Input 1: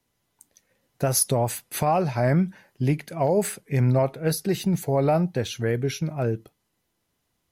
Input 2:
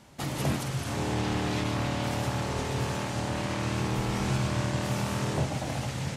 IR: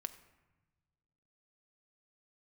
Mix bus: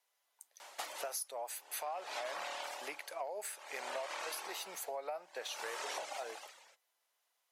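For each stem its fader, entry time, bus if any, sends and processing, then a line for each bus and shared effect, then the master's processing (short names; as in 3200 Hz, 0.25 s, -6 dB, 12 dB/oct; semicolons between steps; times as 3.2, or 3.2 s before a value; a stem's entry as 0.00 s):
-4.0 dB, 0.00 s, no send, dry
+3.0 dB, 0.60 s, send -4 dB, reverb removal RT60 0.98 s; dB-linear tremolo 0.56 Hz, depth 29 dB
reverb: on, RT60 1.2 s, pre-delay 5 ms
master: HPF 600 Hz 24 dB/oct; compressor 6:1, threshold -39 dBFS, peak gain reduction 17 dB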